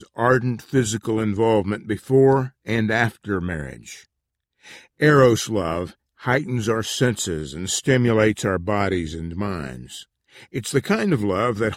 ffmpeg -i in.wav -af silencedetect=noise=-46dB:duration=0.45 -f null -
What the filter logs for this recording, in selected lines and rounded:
silence_start: 4.05
silence_end: 4.64 | silence_duration: 0.59